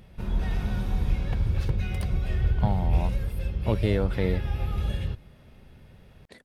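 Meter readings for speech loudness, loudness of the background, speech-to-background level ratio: -30.0 LUFS, -29.5 LUFS, -0.5 dB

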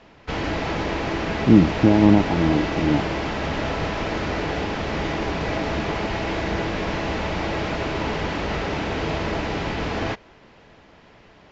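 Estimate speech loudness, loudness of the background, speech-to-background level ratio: -19.0 LUFS, -26.0 LUFS, 7.0 dB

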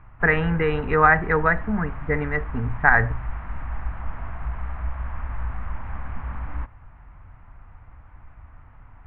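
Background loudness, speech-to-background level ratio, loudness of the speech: -34.5 LUFS, 13.0 dB, -21.5 LUFS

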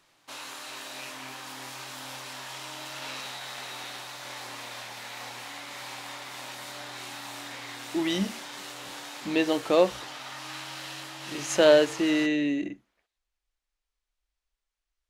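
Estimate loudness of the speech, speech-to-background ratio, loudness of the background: -25.0 LUFS, 13.5 dB, -38.5 LUFS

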